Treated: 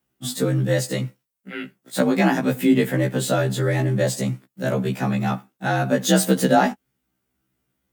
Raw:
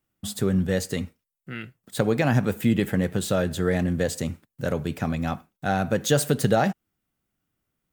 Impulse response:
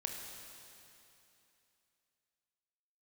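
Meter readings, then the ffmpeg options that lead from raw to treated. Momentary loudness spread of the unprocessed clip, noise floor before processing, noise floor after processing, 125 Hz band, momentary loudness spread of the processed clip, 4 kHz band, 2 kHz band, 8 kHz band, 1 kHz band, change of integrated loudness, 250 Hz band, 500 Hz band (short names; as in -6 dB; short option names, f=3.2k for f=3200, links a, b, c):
13 LU, -84 dBFS, -78 dBFS, +3.0 dB, 11 LU, +4.5 dB, +4.5 dB, +4.0 dB, +5.0 dB, +3.5 dB, +4.0 dB, +3.0 dB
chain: -af "afreqshift=40,afftfilt=real='re*1.73*eq(mod(b,3),0)':imag='im*1.73*eq(mod(b,3),0)':win_size=2048:overlap=0.75,volume=6.5dB"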